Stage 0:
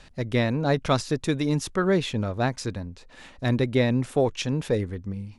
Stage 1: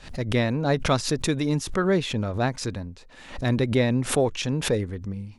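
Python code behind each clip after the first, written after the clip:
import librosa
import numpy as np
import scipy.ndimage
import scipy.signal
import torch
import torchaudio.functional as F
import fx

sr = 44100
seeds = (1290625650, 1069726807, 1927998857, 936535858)

y = fx.pre_swell(x, sr, db_per_s=120.0)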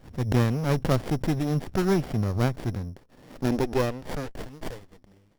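y = np.r_[np.sort(x[:len(x) // 8 * 8].reshape(-1, 8), axis=1).ravel(), x[len(x) // 8 * 8:]]
y = fx.filter_sweep_highpass(y, sr, from_hz=91.0, to_hz=2000.0, start_s=2.9, end_s=4.7, q=1.4)
y = fx.running_max(y, sr, window=33)
y = F.gain(torch.from_numpy(y), -1.5).numpy()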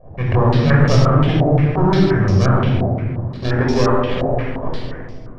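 y = fx.room_shoebox(x, sr, seeds[0], volume_m3=3600.0, walls='mixed', distance_m=5.7)
y = fx.filter_held_lowpass(y, sr, hz=5.7, low_hz=700.0, high_hz=5600.0)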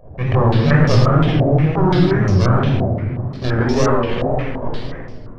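y = fx.wow_flutter(x, sr, seeds[1], rate_hz=2.1, depth_cents=110.0)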